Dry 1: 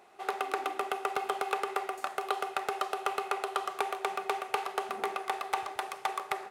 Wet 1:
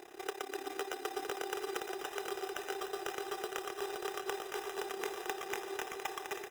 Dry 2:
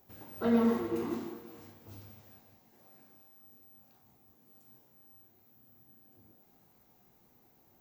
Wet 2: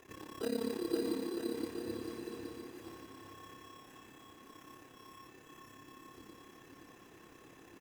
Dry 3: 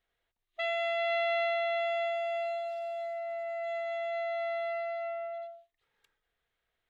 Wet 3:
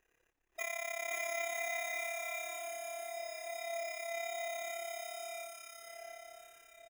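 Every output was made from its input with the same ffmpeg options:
-filter_complex "[0:a]tremolo=f=34:d=0.857,acompressor=threshold=-58dB:ratio=2,superequalizer=6b=3.16:7b=2.51:11b=2.51:12b=0.355:15b=2.24,acrusher=samples=10:mix=1:aa=0.000001,asplit=2[link_01][link_02];[link_02]aecho=0:1:520|962|1338|1657|1928:0.631|0.398|0.251|0.158|0.1[link_03];[link_01][link_03]amix=inputs=2:normalize=0,volume=6dB"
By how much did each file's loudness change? −6.0, −8.5, −7.0 LU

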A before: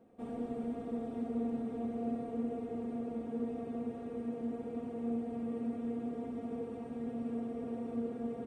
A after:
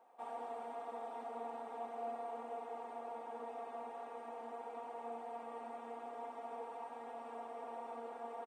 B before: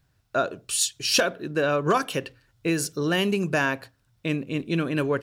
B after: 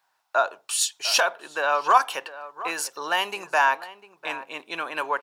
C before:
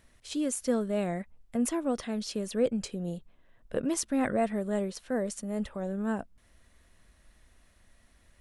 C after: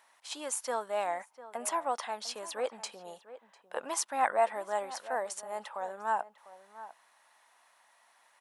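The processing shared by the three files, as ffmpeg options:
-filter_complex "[0:a]highpass=frequency=880:width_type=q:width=4.6,asplit=2[link_01][link_02];[link_02]adelay=699.7,volume=-15dB,highshelf=frequency=4000:gain=-15.7[link_03];[link_01][link_03]amix=inputs=2:normalize=0"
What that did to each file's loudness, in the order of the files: −7.5, +1.0, −2.5 LU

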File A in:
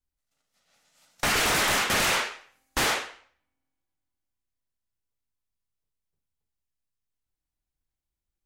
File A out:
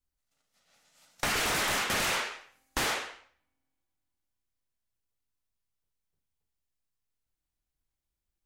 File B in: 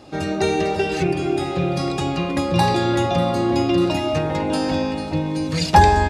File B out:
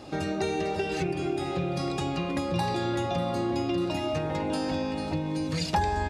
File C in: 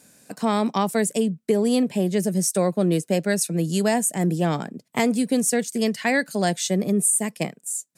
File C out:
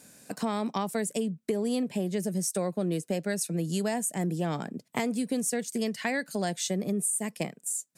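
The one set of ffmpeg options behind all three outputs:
-af "acompressor=threshold=-30dB:ratio=2.5"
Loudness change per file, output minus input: −5.0, −9.0, −8.0 LU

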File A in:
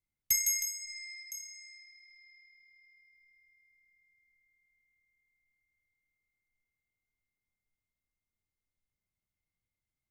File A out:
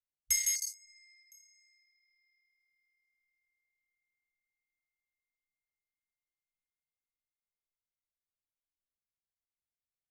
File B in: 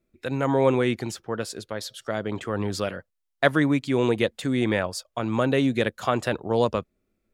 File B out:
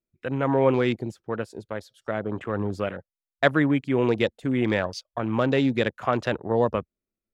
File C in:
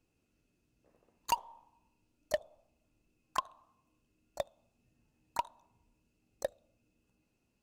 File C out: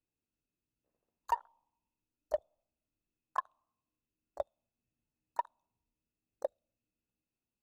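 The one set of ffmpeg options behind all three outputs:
-af "afwtdn=0.0126"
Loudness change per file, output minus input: +1.5, 0.0, −1.0 LU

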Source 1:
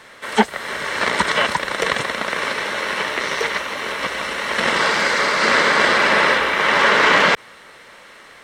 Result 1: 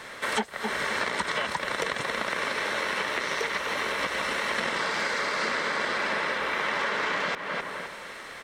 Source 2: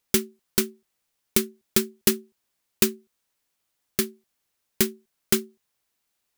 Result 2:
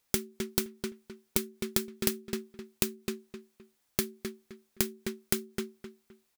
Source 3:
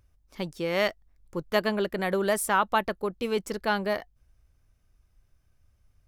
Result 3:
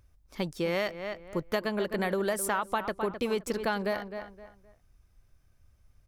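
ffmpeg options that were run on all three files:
-filter_complex "[0:a]bandreject=frequency=2900:width=30,asplit=2[link_01][link_02];[link_02]adelay=259,lowpass=frequency=3000:poles=1,volume=-12.5dB,asplit=2[link_03][link_04];[link_04]adelay=259,lowpass=frequency=3000:poles=1,volume=0.29,asplit=2[link_05][link_06];[link_06]adelay=259,lowpass=frequency=3000:poles=1,volume=0.29[link_07];[link_03][link_05][link_07]amix=inputs=3:normalize=0[link_08];[link_01][link_08]amix=inputs=2:normalize=0,acompressor=threshold=-27dB:ratio=12,volume=2dB"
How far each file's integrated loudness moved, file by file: −10.5, −8.5, −3.5 LU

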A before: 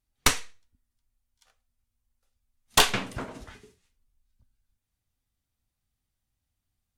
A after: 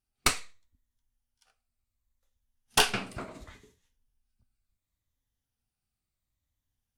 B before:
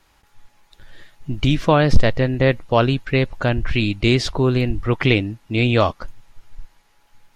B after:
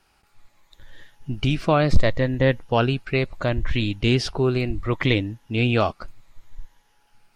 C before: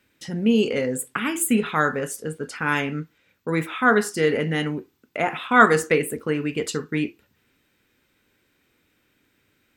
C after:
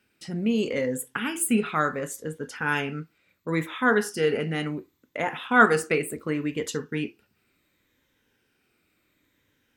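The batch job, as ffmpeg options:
-af "afftfilt=real='re*pow(10,6/40*sin(2*PI*(1.1*log(max(b,1)*sr/1024/100)/log(2)-(-0.7)*(pts-256)/sr)))':imag='im*pow(10,6/40*sin(2*PI*(1.1*log(max(b,1)*sr/1024/100)/log(2)-(-0.7)*(pts-256)/sr)))':win_size=1024:overlap=0.75,volume=-4dB"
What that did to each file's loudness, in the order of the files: −3.0, −3.5, −3.5 LU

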